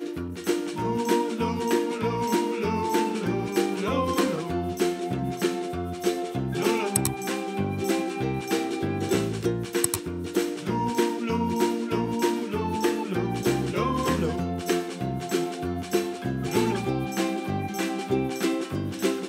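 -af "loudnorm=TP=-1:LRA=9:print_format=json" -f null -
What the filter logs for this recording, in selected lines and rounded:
"input_i" : "-27.0",
"input_tp" : "-4.4",
"input_lra" : "1.4",
"input_thresh" : "-37.0",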